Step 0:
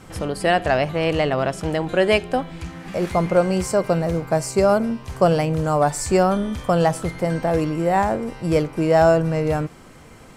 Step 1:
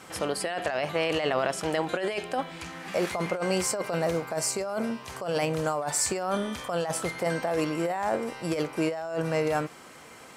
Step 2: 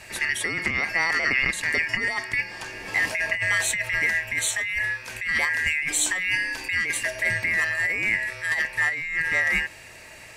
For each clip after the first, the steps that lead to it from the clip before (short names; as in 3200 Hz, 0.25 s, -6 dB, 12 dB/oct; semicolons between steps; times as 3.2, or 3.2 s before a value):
HPF 650 Hz 6 dB/oct; negative-ratio compressor -26 dBFS, ratio -1; gain -1.5 dB
four-band scrambler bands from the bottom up 2143; gain +3.5 dB